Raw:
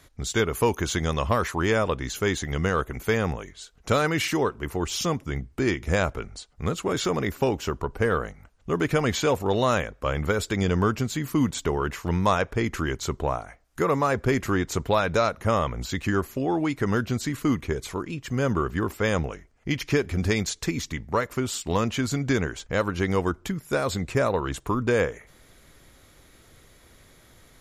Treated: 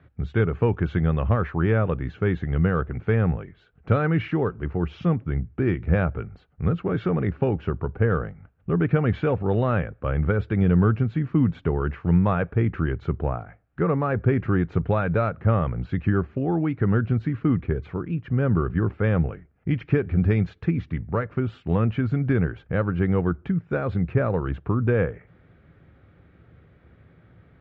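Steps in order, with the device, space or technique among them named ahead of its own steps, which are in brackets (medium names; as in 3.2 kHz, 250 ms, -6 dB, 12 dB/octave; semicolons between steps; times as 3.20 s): bass cabinet (cabinet simulation 63–2200 Hz, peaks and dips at 71 Hz +8 dB, 110 Hz +9 dB, 170 Hz +9 dB, 630 Hz -3 dB, 1 kHz -8 dB, 2 kHz -6 dB)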